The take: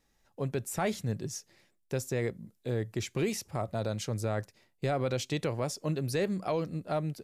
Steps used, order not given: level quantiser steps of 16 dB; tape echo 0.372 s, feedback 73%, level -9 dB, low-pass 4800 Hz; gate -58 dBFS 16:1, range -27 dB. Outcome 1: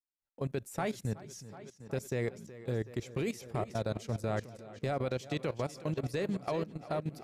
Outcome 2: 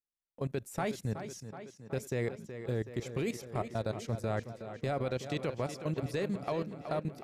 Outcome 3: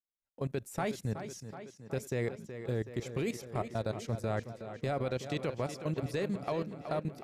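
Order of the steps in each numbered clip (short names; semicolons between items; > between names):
gate > tape echo > level quantiser; level quantiser > gate > tape echo; gate > level quantiser > tape echo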